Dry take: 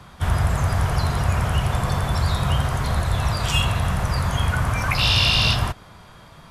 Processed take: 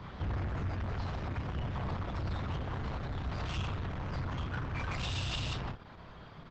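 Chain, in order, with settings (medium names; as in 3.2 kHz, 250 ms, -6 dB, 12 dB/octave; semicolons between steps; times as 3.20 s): Bessel low-pass 3.3 kHz, order 6; doubling 31 ms -4 dB; gain riding 2 s; 1.01–1.47 s: treble shelf 2.2 kHz +2.5 dB; 4.16–4.88 s: band-stop 690 Hz, Q 16; compression 1.5:1, threshold -31 dBFS, peak gain reduction 7 dB; bass shelf 450 Hz +2 dB; 2.43–3.40 s: hum notches 50/100/150 Hz; saturation -27 dBFS, distortion -8 dB; trim -4 dB; Opus 10 kbps 48 kHz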